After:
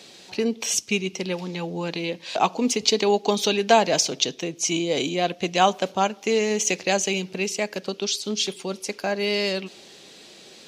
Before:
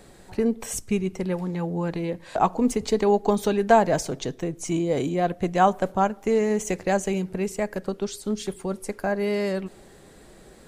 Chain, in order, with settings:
high-pass filter 200 Hz 12 dB per octave
flat-topped bell 3,900 Hz +14.5 dB

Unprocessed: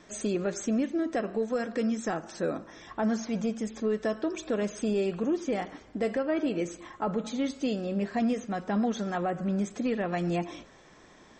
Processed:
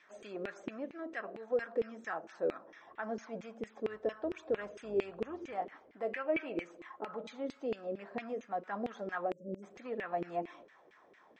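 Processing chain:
0:03.86–0:05.54: sub-octave generator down 2 octaves, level −5 dB
0:06.13–0:06.59: parametric band 2,500 Hz +12 dB 0.54 octaves
0:09.31–0:09.63: time-frequency box erased 590–5,400 Hz
auto-filter band-pass saw down 4.4 Hz 360–2,500 Hz

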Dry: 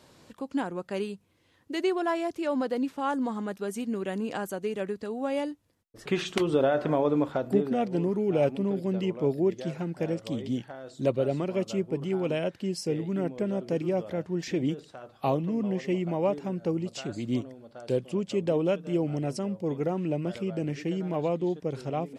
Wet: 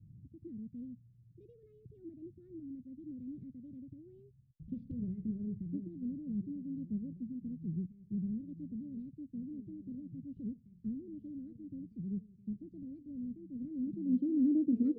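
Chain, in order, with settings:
gliding playback speed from 121% → 175%
low-pass filter sweep 120 Hz → 800 Hz, 0:13.42–0:15.87
Chebyshev band-stop filter 220–3,700 Hz, order 2
level +6 dB

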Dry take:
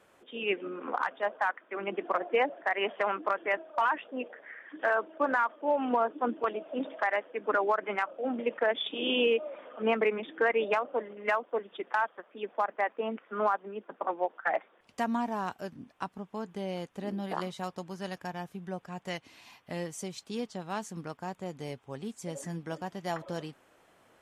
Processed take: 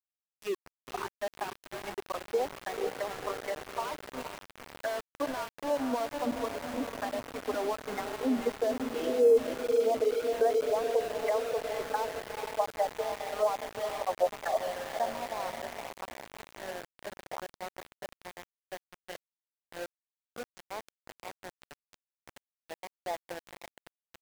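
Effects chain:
spectral dynamics exaggerated over time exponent 1.5
0:21.73–0:22.35: meter weighting curve A
treble cut that deepens with the level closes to 730 Hz, closed at −28.5 dBFS
parametric band 8,000 Hz −11 dB 2.4 octaves
high-pass filter sweep 70 Hz → 550 Hz, 0:06.28–0:09.67
on a send: feedback delay with all-pass diffusion 480 ms, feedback 65%, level −5.5 dB
on the sum: centre clipping without the shift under −35.5 dBFS

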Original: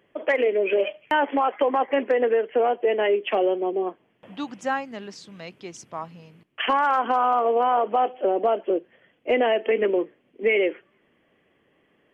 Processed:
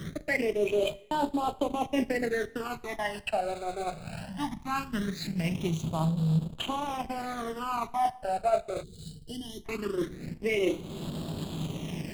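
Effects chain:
linear delta modulator 64 kbit/s, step −34 dBFS
thirty-one-band graphic EQ 100 Hz +6 dB, 160 Hz +12 dB, 500 Hz −11 dB, 4,000 Hz +5 dB
flutter between parallel walls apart 6.6 metres, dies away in 0.23 s
transient designer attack +3 dB, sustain −3 dB
reversed playback
downward compressor 16 to 1, threshold −29 dBFS, peak gain reduction 14 dB
reversed playback
slack as between gear wheels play −33 dBFS
all-pass phaser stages 12, 0.2 Hz, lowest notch 310–2,000 Hz
coupled-rooms reverb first 0.57 s, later 2.3 s, DRR 16 dB
gain on a spectral selection 0:08.83–0:09.65, 490–2,900 Hz −27 dB
level +7.5 dB

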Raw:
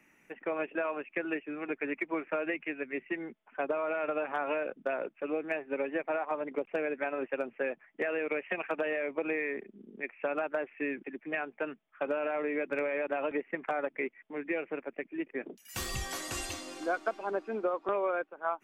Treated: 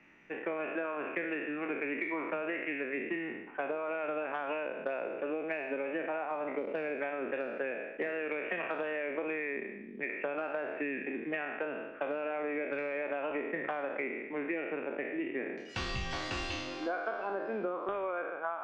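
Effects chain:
peak hold with a decay on every bin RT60 0.85 s
low-pass filter 4,600 Hz 24 dB per octave
downward compressor, threshold −34 dBFS, peak gain reduction 9 dB
level +2 dB

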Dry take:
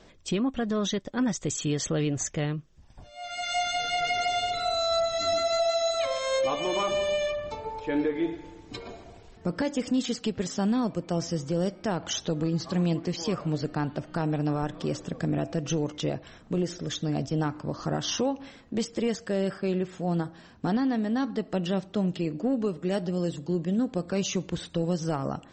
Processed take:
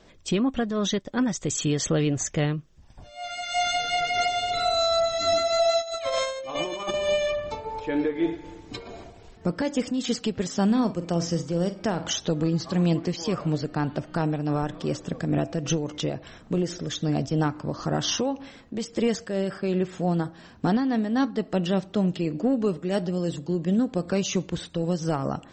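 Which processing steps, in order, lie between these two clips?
0:05.80–0:06.94: compressor whose output falls as the input rises −31 dBFS, ratio −0.5
0:10.65–0:12.15: flutter between parallel walls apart 8 metres, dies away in 0.24 s
amplitude modulation by smooth noise, depth 60%
level +5.5 dB

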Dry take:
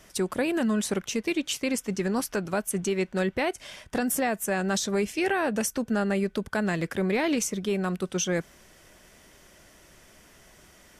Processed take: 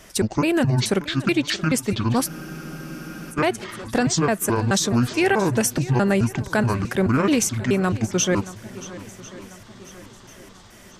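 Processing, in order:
pitch shifter gated in a rhythm −9 semitones, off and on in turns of 214 ms
feedback echo with a long and a short gap by turns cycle 1,045 ms, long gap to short 1.5 to 1, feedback 42%, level −17 dB
frozen spectrum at 0:02.29, 1.02 s
level +7 dB

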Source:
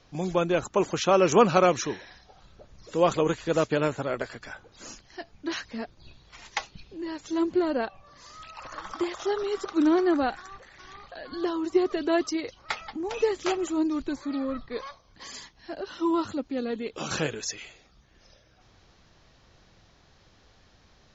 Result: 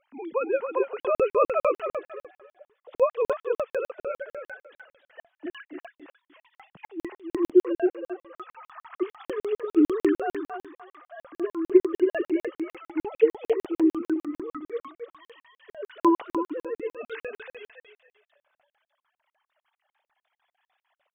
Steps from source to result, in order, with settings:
three sine waves on the formant tracks
repeating echo 274 ms, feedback 24%, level −6 dB
regular buffer underruns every 0.15 s, samples 2,048, zero, from 0:01.00

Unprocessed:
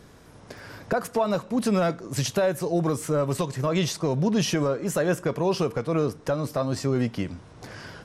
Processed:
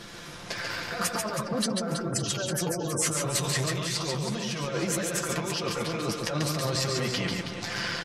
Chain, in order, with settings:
0:01.05–0:03.11: gate on every frequency bin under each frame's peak −20 dB strong
parametric band 3,500 Hz +12.5 dB 3 octaves
comb filter 5.8 ms, depth 64%
compressor whose output falls as the input rises −27 dBFS, ratio −1
flanger 1.8 Hz, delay 8.7 ms, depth 4.9 ms, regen −24%
reverse bouncing-ball delay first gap 140 ms, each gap 1.3×, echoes 5
saturating transformer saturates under 720 Hz

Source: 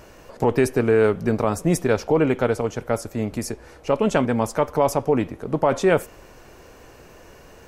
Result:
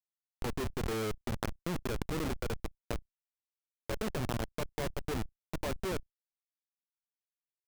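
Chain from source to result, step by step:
delay with a high-pass on its return 257 ms, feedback 71%, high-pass 2,700 Hz, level −3 dB
comparator with hysteresis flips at −17.5 dBFS
output level in coarse steps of 18 dB
level +2.5 dB

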